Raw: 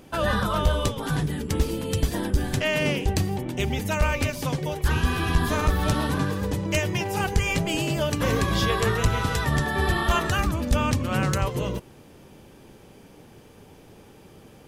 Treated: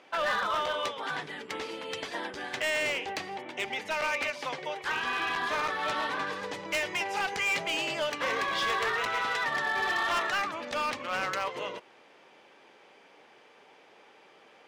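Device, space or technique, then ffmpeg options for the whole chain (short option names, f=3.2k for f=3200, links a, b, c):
megaphone: -filter_complex "[0:a]asettb=1/sr,asplit=3[a][b][c];[a]atrim=end=6.274[d];[b]atrim=start=6.27:end=8.12,asetpts=PTS-STARTPTS,afade=t=in:d=0.004:c=qsin,afade=t=out:st=1.846:d=0.004:c=qsin,bass=f=250:g=4,treble=f=4k:g=5[e];[c]atrim=start=8.116[f];[d][e]acrossfade=d=0.004:c1=hsin:c2=qsin[g];[g][f]acrossfade=d=0.004:c1=qsin:c2=hsin,highpass=680,lowpass=3.8k,equalizer=f=2.1k:t=o:w=0.29:g=4.5,asoftclip=type=hard:threshold=-24.5dB"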